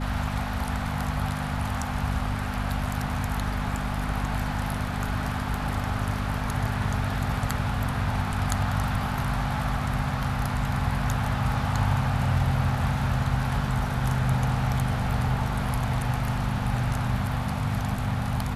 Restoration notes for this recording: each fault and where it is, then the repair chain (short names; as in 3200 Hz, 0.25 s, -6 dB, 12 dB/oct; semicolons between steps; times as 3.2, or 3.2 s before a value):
hum 50 Hz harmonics 5 -31 dBFS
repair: de-hum 50 Hz, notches 5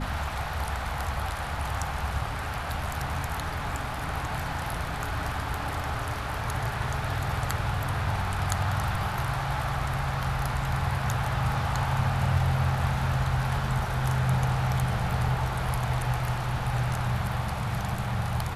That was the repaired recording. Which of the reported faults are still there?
none